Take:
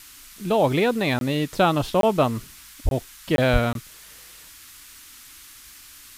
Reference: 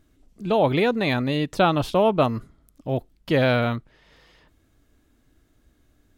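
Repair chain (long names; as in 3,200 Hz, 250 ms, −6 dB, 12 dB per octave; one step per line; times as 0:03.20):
0:02.84–0:02.96: high-pass filter 140 Hz 24 dB per octave
0:03.52–0:03.64: high-pass filter 140 Hz 24 dB per octave
repair the gap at 0:01.19/0:02.01/0:02.89/0:03.36/0:03.73, 22 ms
noise reduction from a noise print 16 dB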